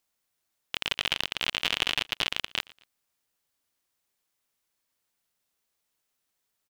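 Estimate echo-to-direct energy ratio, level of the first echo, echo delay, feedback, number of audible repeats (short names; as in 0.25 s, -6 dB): -22.5 dB, -23.0 dB, 0.117 s, 37%, 2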